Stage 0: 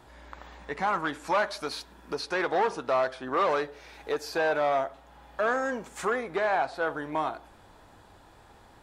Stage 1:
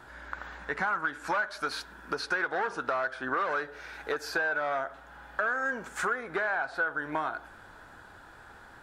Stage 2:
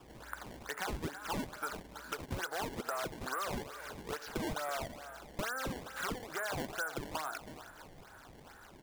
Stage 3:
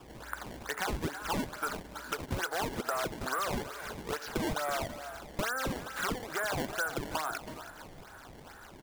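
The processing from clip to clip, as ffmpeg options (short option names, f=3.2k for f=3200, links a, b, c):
-af "equalizer=f=1.5k:t=o:w=0.48:g=14.5,bandreject=f=50:t=h:w=6,bandreject=f=100:t=h:w=6,acompressor=threshold=-27dB:ratio=6"
-filter_complex "[0:a]acrossover=split=480|1600[a][b][c];[a]acompressor=threshold=-49dB:ratio=4[d];[b]acompressor=threshold=-32dB:ratio=4[e];[c]acompressor=threshold=-42dB:ratio=4[f];[d][e][f]amix=inputs=3:normalize=0,aecho=1:1:328|656|984|1312:0.251|0.108|0.0464|0.02,acrusher=samples=20:mix=1:aa=0.000001:lfo=1:lforange=32:lforate=2.3,volume=-4.5dB"
-af "aecho=1:1:325:0.133,volume=4.5dB"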